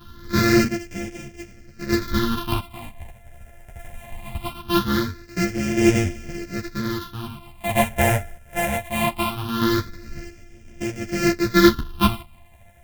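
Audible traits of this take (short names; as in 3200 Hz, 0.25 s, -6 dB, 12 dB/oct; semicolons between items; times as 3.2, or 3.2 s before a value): a buzz of ramps at a fixed pitch in blocks of 128 samples; phasing stages 6, 0.21 Hz, lowest notch 300–1100 Hz; chopped level 0.52 Hz, depth 60%, duty 35%; a shimmering, thickened sound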